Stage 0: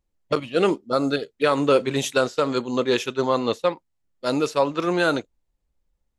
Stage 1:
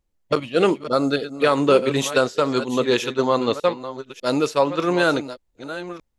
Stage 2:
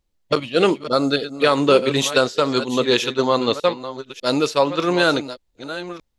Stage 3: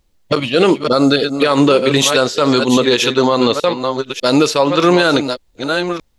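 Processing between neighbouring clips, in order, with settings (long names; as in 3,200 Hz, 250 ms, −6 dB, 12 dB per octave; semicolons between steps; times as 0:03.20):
delay that plays each chunk backwards 600 ms, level −12.5 dB; level +2 dB
parametric band 4,000 Hz +5.5 dB 1.1 octaves; level +1 dB
downward compressor 4 to 1, threshold −17 dBFS, peak gain reduction 7.5 dB; boost into a limiter +13 dB; level −1 dB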